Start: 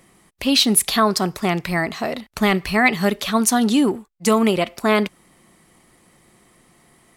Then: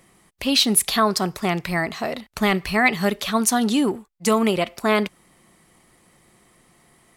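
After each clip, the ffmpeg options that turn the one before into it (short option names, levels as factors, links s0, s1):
-af "equalizer=f=270:w=1.5:g=-2,volume=0.841"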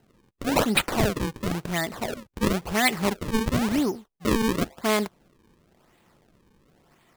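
-af "acrusher=samples=37:mix=1:aa=0.000001:lfo=1:lforange=59.2:lforate=0.96,volume=0.631"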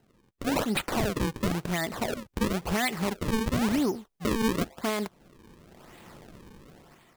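-af "dynaudnorm=f=230:g=7:m=5.96,alimiter=limit=0.158:level=0:latency=1:release=418,volume=0.708"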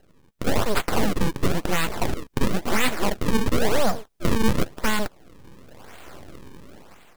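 -af "aeval=exprs='abs(val(0))':c=same,volume=2.82"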